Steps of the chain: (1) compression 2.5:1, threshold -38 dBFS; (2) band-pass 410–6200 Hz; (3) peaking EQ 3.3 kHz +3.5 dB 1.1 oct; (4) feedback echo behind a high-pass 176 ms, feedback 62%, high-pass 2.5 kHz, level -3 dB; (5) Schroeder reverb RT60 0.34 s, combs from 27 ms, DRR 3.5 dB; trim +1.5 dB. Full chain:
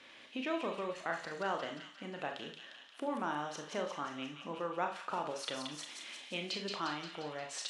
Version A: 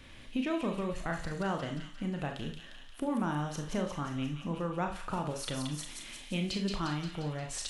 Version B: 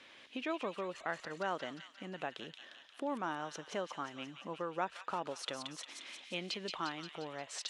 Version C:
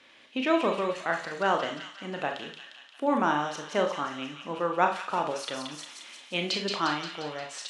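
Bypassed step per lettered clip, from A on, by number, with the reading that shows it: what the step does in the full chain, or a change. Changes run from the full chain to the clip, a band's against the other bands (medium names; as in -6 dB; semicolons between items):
2, 125 Hz band +15.0 dB; 5, echo-to-direct -1.5 dB to -7.5 dB; 1, mean gain reduction 6.5 dB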